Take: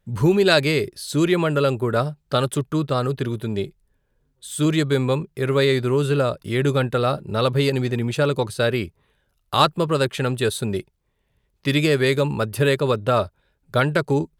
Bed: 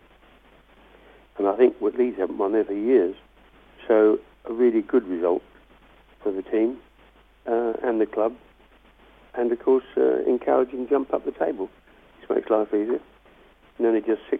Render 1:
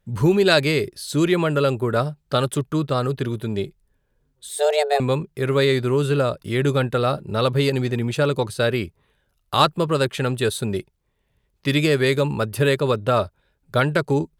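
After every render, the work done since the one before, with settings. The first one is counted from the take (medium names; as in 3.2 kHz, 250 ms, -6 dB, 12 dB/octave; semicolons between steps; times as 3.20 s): 4.49–5.00 s: frequency shift +290 Hz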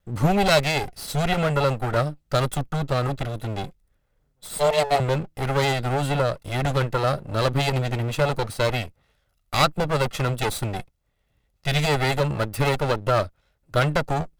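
comb filter that takes the minimum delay 1.5 ms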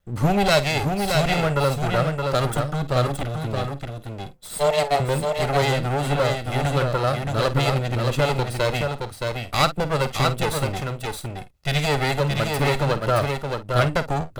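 doubling 50 ms -13.5 dB; delay 621 ms -4.5 dB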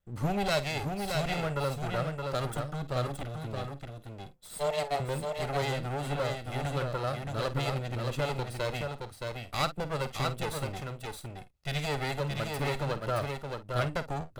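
trim -10.5 dB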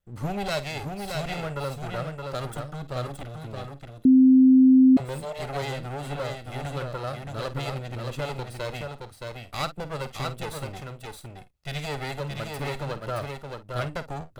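4.05–4.97 s: bleep 260 Hz -11.5 dBFS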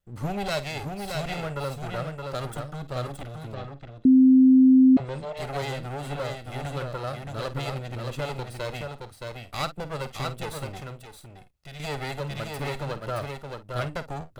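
3.54–5.37 s: distance through air 120 m; 11.01–11.80 s: compression 2:1, threshold -46 dBFS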